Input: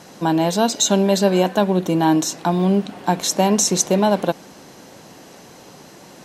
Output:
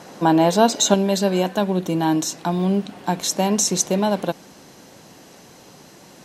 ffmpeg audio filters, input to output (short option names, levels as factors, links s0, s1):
-af "asetnsamples=n=441:p=0,asendcmd='0.94 equalizer g -2.5',equalizer=f=690:w=0.35:g=5,volume=0.841"